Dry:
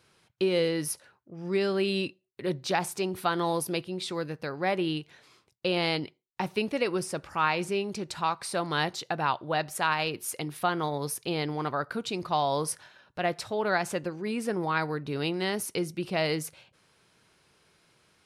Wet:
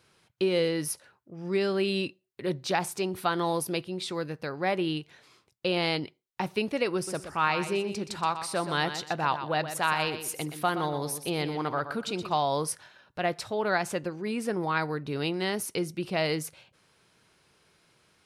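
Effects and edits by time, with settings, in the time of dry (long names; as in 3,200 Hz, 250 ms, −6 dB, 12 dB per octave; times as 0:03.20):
0:06.95–0:12.38: repeating echo 123 ms, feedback 25%, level −10 dB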